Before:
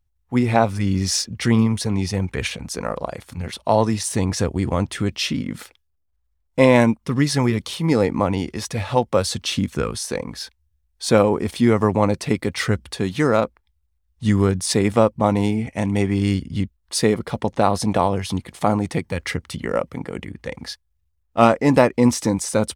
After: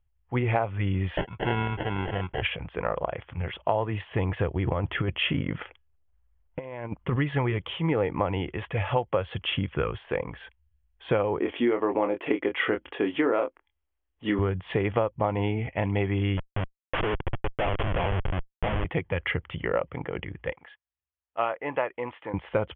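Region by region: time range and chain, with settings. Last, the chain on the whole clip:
1.17–2.42 s: bass shelf 200 Hz -8 dB + sample-rate reducer 1.2 kHz
4.67–7.16 s: low-pass 2.6 kHz 6 dB/octave + compressor with a negative ratio -22 dBFS, ratio -0.5
11.39–14.39 s: resonant low shelf 190 Hz -13 dB, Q 3 + doubling 25 ms -6.5 dB
16.37–18.85 s: bass shelf 140 Hz -5 dB + Schmitt trigger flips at -22 dBFS
20.52–22.34 s: high-pass 1.5 kHz 6 dB/octave + treble shelf 2.1 kHz -10 dB
whole clip: Chebyshev low-pass 3.3 kHz, order 8; peaking EQ 230 Hz -12 dB 0.61 oct; compression 6:1, threshold -21 dBFS

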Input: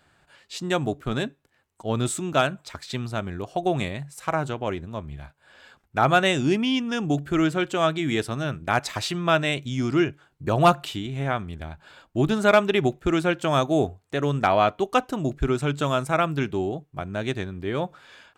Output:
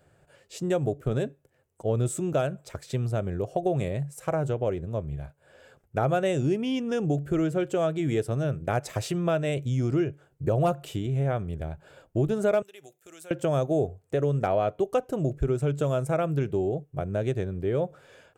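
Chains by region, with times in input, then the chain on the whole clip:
12.62–13.31 s: compression 4:1, threshold -22 dBFS + differentiator
whole clip: graphic EQ 125/250/500/1000/2000/4000 Hz +7/-5/+10/-8/-4/-10 dB; compression 2.5:1, threshold -24 dBFS

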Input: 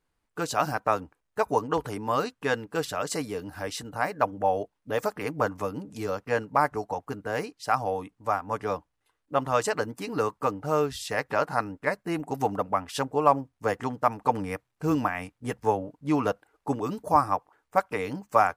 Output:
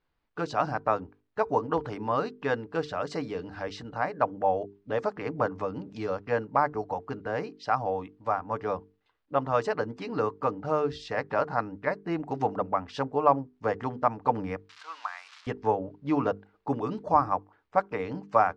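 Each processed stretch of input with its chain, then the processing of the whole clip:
14.69–15.47 s: zero-crossing glitches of -22.5 dBFS + ladder high-pass 910 Hz, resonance 35% + tape noise reduction on one side only decoder only
whole clip: low-pass 4.7 kHz 24 dB/octave; hum notches 50/100/150/200/250/300/350/400/450 Hz; dynamic bell 3.2 kHz, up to -7 dB, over -43 dBFS, Q 0.71

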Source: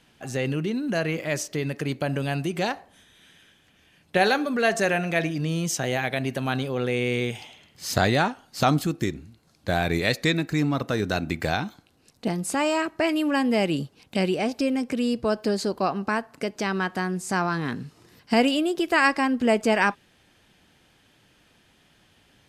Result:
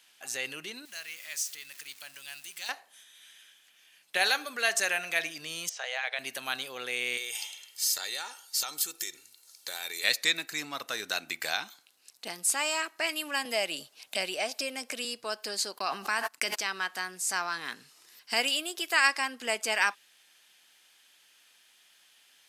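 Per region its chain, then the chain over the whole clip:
0.85–2.69 s: jump at every zero crossing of -36 dBFS + amplifier tone stack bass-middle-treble 5-5-5
5.69–6.19 s: de-esser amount 65% + brick-wall FIR high-pass 410 Hz + distance through air 120 m
7.17–10.04 s: tone controls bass -5 dB, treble +9 dB + comb 2.2 ms, depth 50% + compression 5:1, threshold -29 dBFS
13.45–15.05 s: peaking EQ 630 Hz +9 dB 0.31 oct + three bands compressed up and down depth 40%
15.78–16.57 s: gate -44 dBFS, range -43 dB + peaking EQ 500 Hz -4.5 dB 0.6 oct + level flattener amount 100%
whole clip: high-pass 1.1 kHz 6 dB/octave; tilt EQ +3 dB/octave; trim -3.5 dB

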